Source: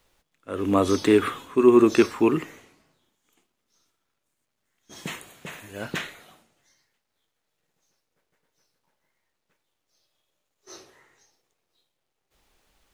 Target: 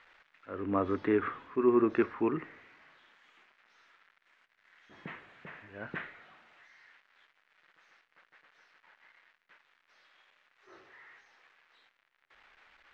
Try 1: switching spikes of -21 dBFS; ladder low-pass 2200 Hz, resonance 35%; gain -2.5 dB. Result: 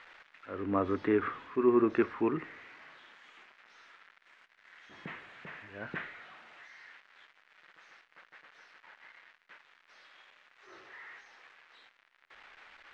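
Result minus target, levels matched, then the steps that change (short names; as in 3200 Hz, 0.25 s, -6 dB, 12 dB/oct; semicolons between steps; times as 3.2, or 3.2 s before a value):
switching spikes: distortion +6 dB
change: switching spikes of -27.5 dBFS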